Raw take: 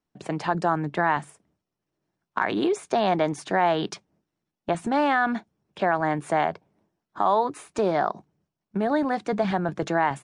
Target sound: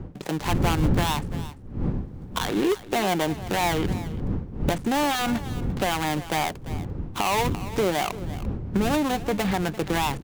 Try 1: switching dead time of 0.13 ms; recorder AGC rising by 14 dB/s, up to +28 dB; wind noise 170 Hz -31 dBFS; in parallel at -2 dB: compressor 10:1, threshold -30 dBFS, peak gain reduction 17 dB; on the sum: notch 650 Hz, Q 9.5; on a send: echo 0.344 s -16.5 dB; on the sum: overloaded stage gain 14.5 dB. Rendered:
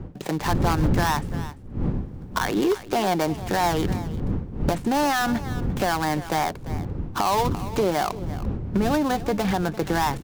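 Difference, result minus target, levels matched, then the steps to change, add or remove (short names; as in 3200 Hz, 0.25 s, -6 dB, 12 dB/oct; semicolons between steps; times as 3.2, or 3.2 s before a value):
compressor: peak gain reduction -6.5 dB; switching dead time: distortion -7 dB
change: switching dead time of 0.26 ms; change: compressor 10:1, threshold -38 dBFS, peak gain reduction 23.5 dB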